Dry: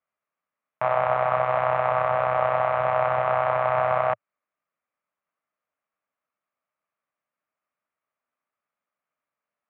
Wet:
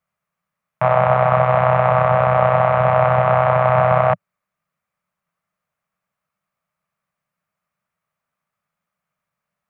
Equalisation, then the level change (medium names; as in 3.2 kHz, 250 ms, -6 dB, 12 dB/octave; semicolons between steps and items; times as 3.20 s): dynamic bell 410 Hz, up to +5 dB, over -37 dBFS, Q 1; resonant low shelf 220 Hz +7.5 dB, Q 3; +6.0 dB